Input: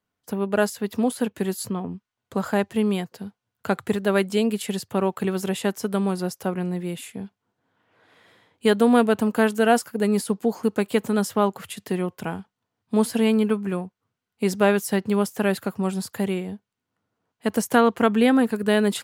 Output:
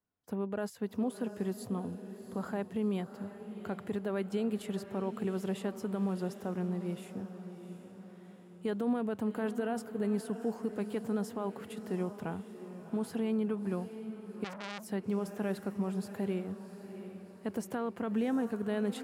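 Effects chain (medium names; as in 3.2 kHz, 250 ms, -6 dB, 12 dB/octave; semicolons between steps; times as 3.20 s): treble shelf 2 kHz -10.5 dB; peak limiter -17 dBFS, peak gain reduction 11.5 dB; echo that smears into a reverb 719 ms, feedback 49%, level -11 dB; 14.44–14.90 s: transformer saturation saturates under 2.8 kHz; trim -7.5 dB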